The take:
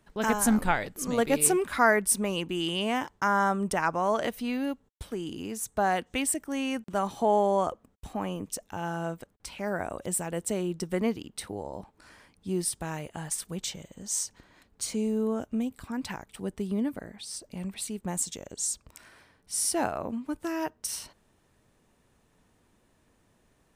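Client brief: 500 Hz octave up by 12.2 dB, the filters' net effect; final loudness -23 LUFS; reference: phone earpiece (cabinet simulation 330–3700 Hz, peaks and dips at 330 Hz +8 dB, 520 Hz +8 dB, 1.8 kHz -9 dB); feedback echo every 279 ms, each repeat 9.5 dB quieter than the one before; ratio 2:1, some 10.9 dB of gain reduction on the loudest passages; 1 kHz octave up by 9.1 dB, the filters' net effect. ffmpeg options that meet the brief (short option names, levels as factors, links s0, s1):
-af "equalizer=f=500:t=o:g=8,equalizer=f=1000:t=o:g=8.5,acompressor=threshold=0.0355:ratio=2,highpass=330,equalizer=f=330:t=q:w=4:g=8,equalizer=f=520:t=q:w=4:g=8,equalizer=f=1800:t=q:w=4:g=-9,lowpass=f=3700:w=0.5412,lowpass=f=3700:w=1.3066,aecho=1:1:279|558|837|1116:0.335|0.111|0.0365|0.012,volume=1.78"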